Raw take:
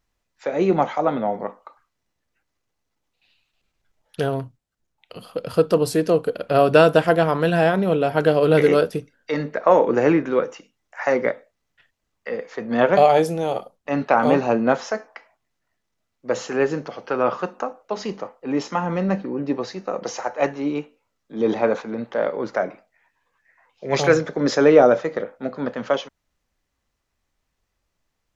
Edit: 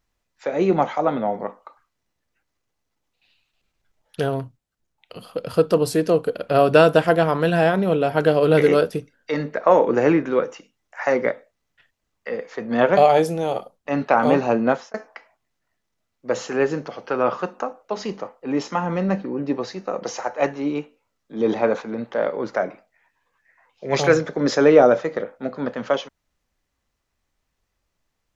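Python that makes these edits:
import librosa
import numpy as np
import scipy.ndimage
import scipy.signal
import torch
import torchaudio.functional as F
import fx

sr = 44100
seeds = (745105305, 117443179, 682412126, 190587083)

y = fx.edit(x, sr, fx.fade_out_span(start_s=14.68, length_s=0.26), tone=tone)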